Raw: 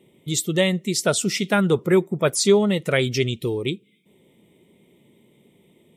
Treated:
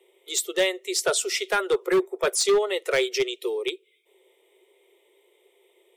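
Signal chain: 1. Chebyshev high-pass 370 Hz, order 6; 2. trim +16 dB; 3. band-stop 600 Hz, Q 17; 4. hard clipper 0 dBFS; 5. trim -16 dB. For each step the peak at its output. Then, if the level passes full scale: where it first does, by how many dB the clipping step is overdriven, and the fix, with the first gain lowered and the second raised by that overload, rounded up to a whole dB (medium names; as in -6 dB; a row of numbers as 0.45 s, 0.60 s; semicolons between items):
-7.5 dBFS, +8.5 dBFS, +9.0 dBFS, 0.0 dBFS, -16.0 dBFS; step 2, 9.0 dB; step 2 +7 dB, step 5 -7 dB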